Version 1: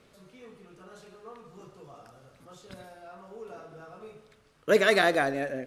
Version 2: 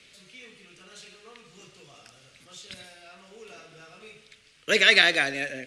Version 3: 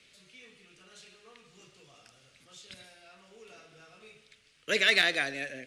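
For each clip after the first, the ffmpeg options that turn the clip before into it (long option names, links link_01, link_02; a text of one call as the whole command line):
ffmpeg -i in.wav -filter_complex "[0:a]lowpass=frequency=9900:width=0.5412,lowpass=frequency=9900:width=1.3066,highshelf=frequency=1600:width_type=q:width=1.5:gain=14,acrossover=split=100|660|5400[link_01][link_02][link_03][link_04];[link_04]alimiter=level_in=1.5dB:limit=-24dB:level=0:latency=1:release=316,volume=-1.5dB[link_05];[link_01][link_02][link_03][link_05]amix=inputs=4:normalize=0,volume=-3.5dB" out.wav
ffmpeg -i in.wav -af "asoftclip=type=hard:threshold=-6.5dB,volume=-6dB" out.wav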